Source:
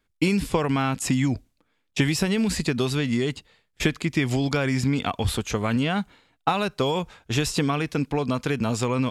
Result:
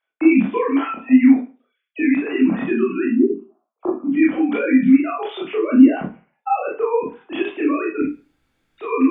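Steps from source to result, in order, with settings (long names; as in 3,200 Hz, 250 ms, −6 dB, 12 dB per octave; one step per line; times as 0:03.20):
three sine waves on the formant tracks
0:03.05–0:04.11: elliptic low-pass filter 1,200 Hz, stop band 40 dB
0:05.54–0:07.17: tilt shelving filter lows +7 dB, about 740 Hz
0:08.02–0:08.78: fill with room tone
convolution reverb RT60 0.35 s, pre-delay 17 ms, DRR −5 dB
level −2 dB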